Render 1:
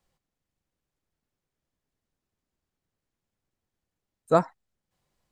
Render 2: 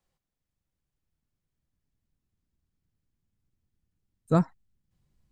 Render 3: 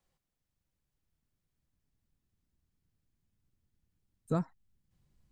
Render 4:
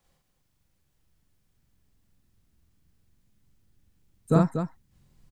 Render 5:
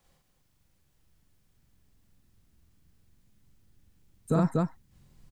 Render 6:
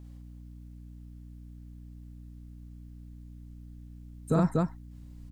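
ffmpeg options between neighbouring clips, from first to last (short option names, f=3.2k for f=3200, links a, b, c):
-af "asubboost=boost=6.5:cutoff=240,volume=-4.5dB"
-af "acompressor=threshold=-34dB:ratio=2"
-af "aecho=1:1:43.73|239.1:0.891|0.447,volume=8.5dB"
-af "alimiter=limit=-18dB:level=0:latency=1,volume=2.5dB"
-af "aeval=exprs='val(0)+0.00562*(sin(2*PI*60*n/s)+sin(2*PI*2*60*n/s)/2+sin(2*PI*3*60*n/s)/3+sin(2*PI*4*60*n/s)/4+sin(2*PI*5*60*n/s)/5)':c=same"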